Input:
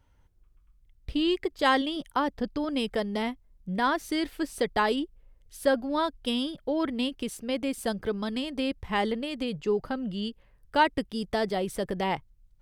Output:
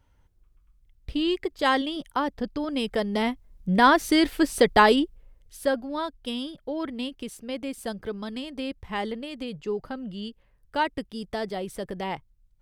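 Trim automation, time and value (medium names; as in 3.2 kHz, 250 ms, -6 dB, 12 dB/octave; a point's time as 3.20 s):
2.72 s +0.5 dB
3.72 s +8.5 dB
4.84 s +8.5 dB
5.91 s -3 dB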